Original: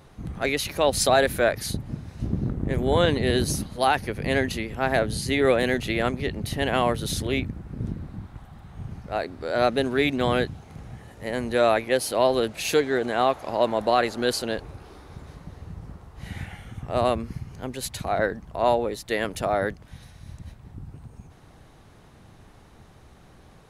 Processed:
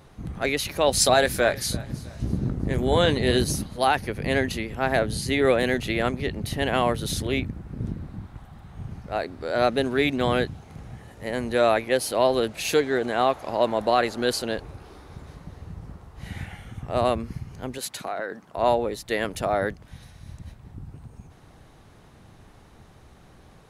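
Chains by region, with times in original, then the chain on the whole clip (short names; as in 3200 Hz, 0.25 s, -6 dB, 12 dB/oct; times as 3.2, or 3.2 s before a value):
0.86–3.44 bell 6500 Hz +4.5 dB 1.7 oct + doubler 16 ms -12.5 dB + feedback echo 0.327 s, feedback 39%, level -20.5 dB
17.78–18.57 HPF 260 Hz + bell 1400 Hz +4 dB 0.4 oct + compressor 10:1, threshold -25 dBFS
whole clip: dry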